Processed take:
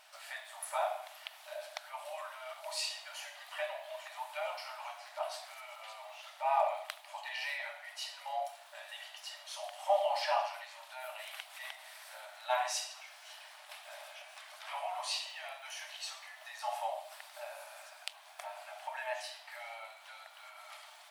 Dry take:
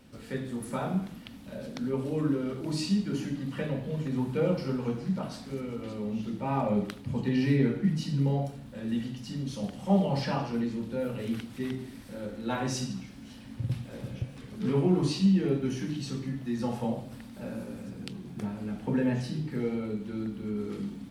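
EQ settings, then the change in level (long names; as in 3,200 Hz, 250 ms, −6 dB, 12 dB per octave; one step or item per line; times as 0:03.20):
dynamic equaliser 5,500 Hz, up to −5 dB, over −58 dBFS, Q 0.98
linear-phase brick-wall high-pass 580 Hz
dynamic equaliser 1,400 Hz, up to −6 dB, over −58 dBFS, Q 2
+4.5 dB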